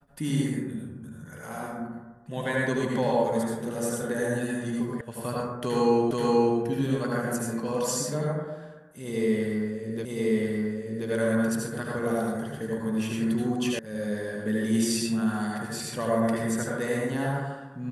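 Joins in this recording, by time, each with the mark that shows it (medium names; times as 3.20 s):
5.01 s: sound stops dead
6.11 s: repeat of the last 0.48 s
10.05 s: repeat of the last 1.03 s
13.79 s: sound stops dead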